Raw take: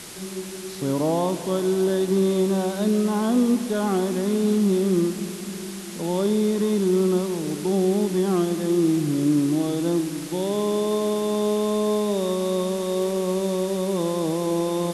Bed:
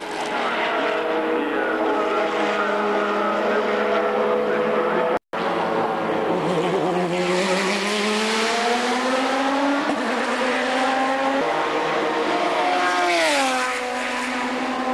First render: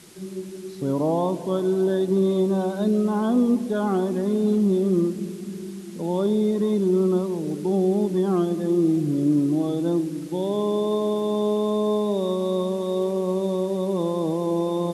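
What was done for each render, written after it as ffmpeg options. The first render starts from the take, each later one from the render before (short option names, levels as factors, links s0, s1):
-af "afftdn=nr=11:nf=-34"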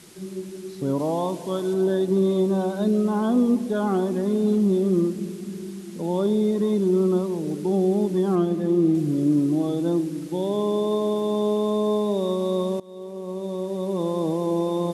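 -filter_complex "[0:a]asettb=1/sr,asplit=3[s0][s1][s2];[s0]atrim=end=0.994[s3];[s1]atrim=start=0.99:end=1.74,asetpts=PTS-STARTPTS,afade=t=in:d=0.004:c=qsin,afade=t=out:st=0.746:d=0.004:c=qsin,tiltshelf=f=1200:g=-3.5[s4];[s2]atrim=start=1.736[s5];[s3][s4]acrossfade=d=0.004:c1=hsin:c2=qsin[s6];[s6][s5]acrossfade=d=0.004:c1=qsin:c2=hsin,asettb=1/sr,asplit=3[s7][s8][s9];[s7]atrim=end=8.354[s10];[s8]atrim=start=8.35:end=8.95,asetpts=PTS-STARTPTS,afade=t=in:d=0.004:c=qsin,afade=t=out:st=0.596:d=0.004:c=qsin,bass=f=250:g=2,treble=f=4000:g=-6[s11];[s9]atrim=start=8.946[s12];[s10][s11]acrossfade=d=0.004:c1=hsin:c2=qsin[s13];[s13][s12]acrossfade=d=0.004:c1=qsin:c2=hsin,asplit=2[s14][s15];[s14]atrim=end=12.8,asetpts=PTS-STARTPTS,afade=t=out:st=12.796:d=0.004:c=hsin:silence=0.0794328[s16];[s15]atrim=start=12.8,asetpts=PTS-STARTPTS,afade=t=in:d=1.39:silence=0.0794328[s17];[s16][s17]concat=n=2:v=0:a=1"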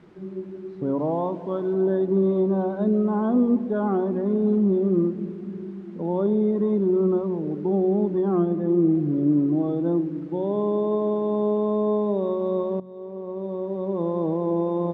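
-af "lowpass=1400,bandreject=f=45.98:t=h:w=4,bandreject=f=91.96:t=h:w=4,bandreject=f=137.94:t=h:w=4,bandreject=f=183.92:t=h:w=4,bandreject=f=229.9:t=h:w=4"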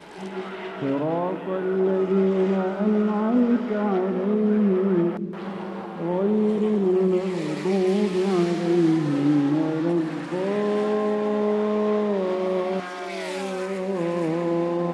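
-filter_complex "[1:a]volume=0.188[s0];[0:a][s0]amix=inputs=2:normalize=0"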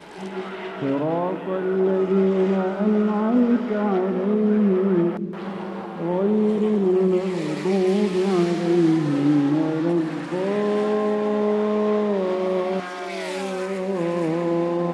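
-af "volume=1.19"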